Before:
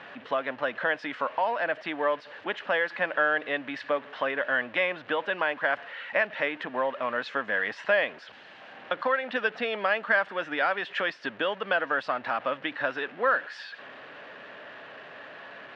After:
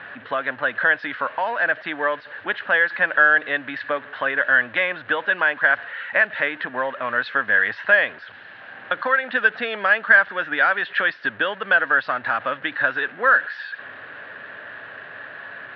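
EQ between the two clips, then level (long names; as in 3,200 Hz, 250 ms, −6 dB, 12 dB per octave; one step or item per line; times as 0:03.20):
high-frequency loss of the air 260 metres
dynamic equaliser 4,500 Hz, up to +4 dB, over −46 dBFS, Q 1.1
graphic EQ with 15 bands 100 Hz +11 dB, 1,600 Hz +11 dB, 4,000 Hz +7 dB
+2.0 dB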